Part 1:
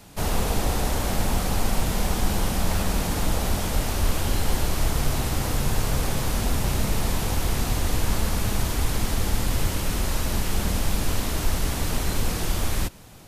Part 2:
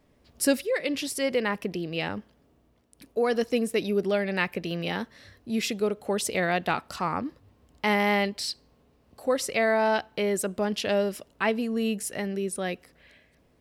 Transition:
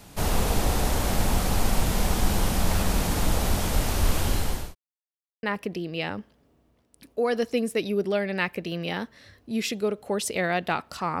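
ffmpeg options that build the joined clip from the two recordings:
-filter_complex "[0:a]apad=whole_dur=11.2,atrim=end=11.2,asplit=2[a][b];[a]atrim=end=4.75,asetpts=PTS-STARTPTS,afade=t=out:st=4.14:d=0.61:c=qsin[c];[b]atrim=start=4.75:end=5.43,asetpts=PTS-STARTPTS,volume=0[d];[1:a]atrim=start=1.42:end=7.19,asetpts=PTS-STARTPTS,afade=t=in:d=0.004:c=hsin[e];[c][d][e]concat=n=3:v=0:a=1"

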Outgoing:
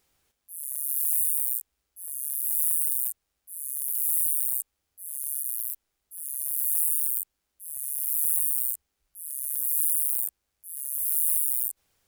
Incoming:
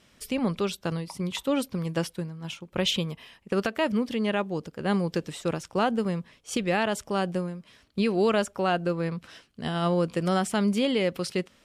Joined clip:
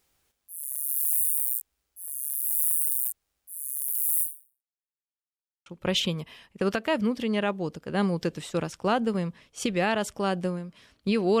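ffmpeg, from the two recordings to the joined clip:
-filter_complex "[0:a]apad=whole_dur=11.4,atrim=end=11.4,asplit=2[a][b];[a]atrim=end=4.85,asetpts=PTS-STARTPTS,afade=t=out:st=4.22:d=0.63:c=exp[c];[b]atrim=start=4.85:end=5.66,asetpts=PTS-STARTPTS,volume=0[d];[1:a]atrim=start=2.57:end=8.31,asetpts=PTS-STARTPTS,afade=t=in:d=0.004:c=hsin[e];[c][d][e]concat=n=3:v=0:a=1"

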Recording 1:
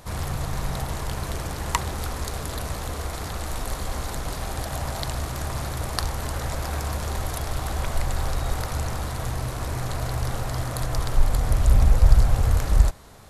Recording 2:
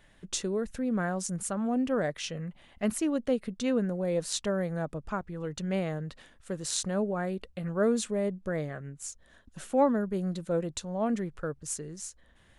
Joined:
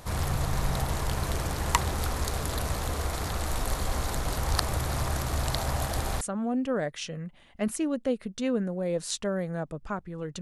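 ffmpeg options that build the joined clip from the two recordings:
-filter_complex "[0:a]apad=whole_dur=10.41,atrim=end=10.41,asplit=2[a][b];[a]atrim=end=4.372[c];[b]atrim=start=4.368:end=6.212,asetpts=PTS-STARTPTS,areverse[d];[1:a]atrim=start=1.428:end=5.63[e];[c][d]acrossfade=d=0.004:c1=hsin:c2=hsin[f];[f][e]acrossfade=d=0.004:c1=hsin:c2=hsin"

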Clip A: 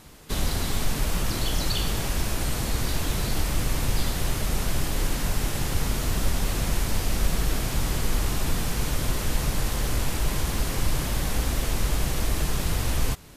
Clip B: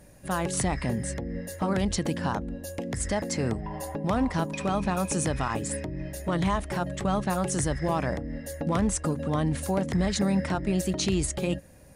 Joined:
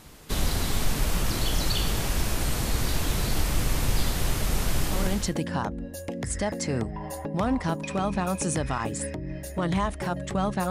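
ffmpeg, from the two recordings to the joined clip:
-filter_complex "[0:a]apad=whole_dur=10.7,atrim=end=10.7,atrim=end=5.36,asetpts=PTS-STARTPTS[a];[1:a]atrim=start=1.5:end=7.4,asetpts=PTS-STARTPTS[b];[a][b]acrossfade=d=0.56:c1=qsin:c2=qsin"

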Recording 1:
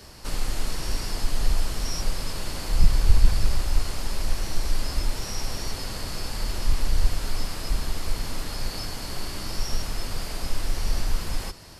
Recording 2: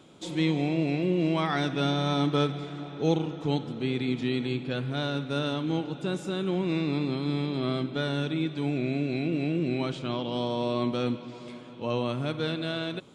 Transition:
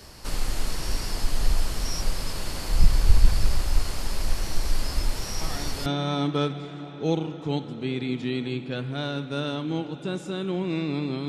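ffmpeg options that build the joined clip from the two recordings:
-filter_complex "[1:a]asplit=2[a][b];[0:a]apad=whole_dur=11.28,atrim=end=11.28,atrim=end=5.862[c];[b]atrim=start=1.848:end=7.27[d];[a]atrim=start=1.4:end=1.85,asetpts=PTS-STARTPTS,volume=-11dB,afade=t=in:d=0.004:c=hsin,afade=t=out:st=0.446:d=0.004:c=hsin,adelay=238581S[e];[c][d]acrossfade=d=0.004:c1=hsin:c2=hsin[f];[f][e]amix=inputs=2:normalize=0"

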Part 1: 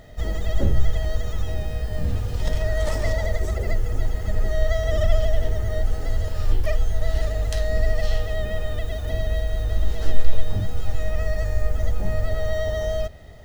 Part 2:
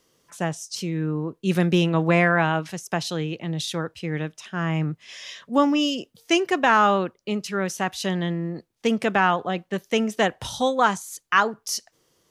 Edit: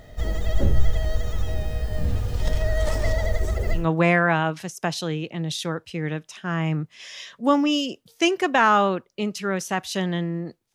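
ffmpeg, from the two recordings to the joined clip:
-filter_complex "[0:a]apad=whole_dur=10.74,atrim=end=10.74,atrim=end=3.88,asetpts=PTS-STARTPTS[a];[1:a]atrim=start=1.81:end=8.83,asetpts=PTS-STARTPTS[b];[a][b]acrossfade=d=0.16:c1=tri:c2=tri"

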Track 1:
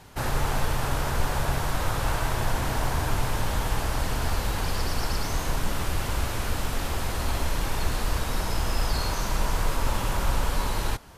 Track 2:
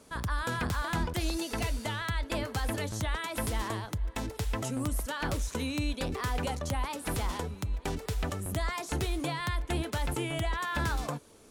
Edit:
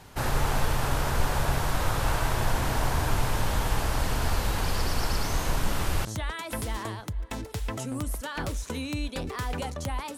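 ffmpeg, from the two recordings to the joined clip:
-filter_complex "[1:a]asplit=2[a][b];[0:a]apad=whole_dur=10.17,atrim=end=10.17,atrim=end=6.052[c];[b]atrim=start=2.898:end=7.02[d];[a]atrim=start=2.27:end=2.9,asetpts=PTS-STARTPTS,volume=-16dB,afade=t=in:d=0.004:c=hsin,afade=t=out:st=0.626:d=0.004:c=hsin,adelay=5420[e];[c][d]acrossfade=d=0.004:c1=hsin:c2=hsin[f];[f][e]amix=inputs=2:normalize=0"

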